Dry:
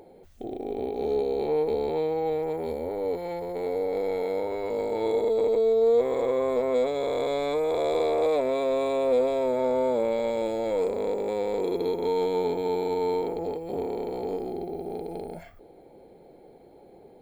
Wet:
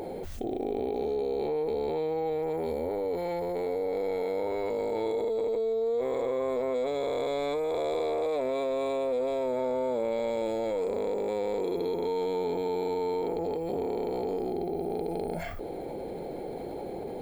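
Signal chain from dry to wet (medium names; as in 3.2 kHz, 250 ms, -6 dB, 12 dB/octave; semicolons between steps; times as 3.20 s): level flattener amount 70%; trim -8.5 dB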